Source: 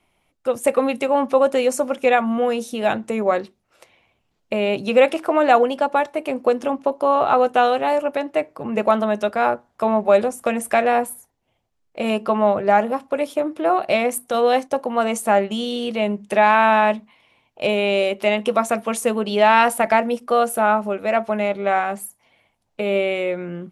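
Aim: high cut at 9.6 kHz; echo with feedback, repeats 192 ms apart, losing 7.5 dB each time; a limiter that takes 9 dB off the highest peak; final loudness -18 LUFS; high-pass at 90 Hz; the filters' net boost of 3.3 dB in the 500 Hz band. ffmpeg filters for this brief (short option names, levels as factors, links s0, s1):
-af "highpass=90,lowpass=9600,equalizer=f=500:t=o:g=4,alimiter=limit=0.355:level=0:latency=1,aecho=1:1:192|384|576|768|960:0.422|0.177|0.0744|0.0312|0.0131,volume=1.19"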